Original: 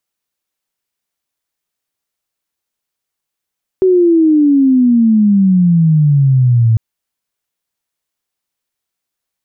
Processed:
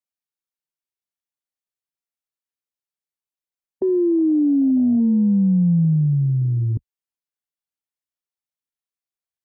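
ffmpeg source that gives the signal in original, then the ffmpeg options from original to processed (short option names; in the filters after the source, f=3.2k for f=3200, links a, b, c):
-f lavfi -i "aevalsrc='pow(10,(-6-0.5*t/2.95)/20)*sin(2*PI*380*2.95/log(110/380)*(exp(log(110/380)*t/2.95)-1))':d=2.95:s=44100"
-filter_complex "[0:a]afwtdn=0.178,acrossover=split=210[a][b];[a]acompressor=threshold=-23dB:ratio=6[c];[b]alimiter=limit=-17.5dB:level=0:latency=1:release=24[d];[c][d]amix=inputs=2:normalize=0"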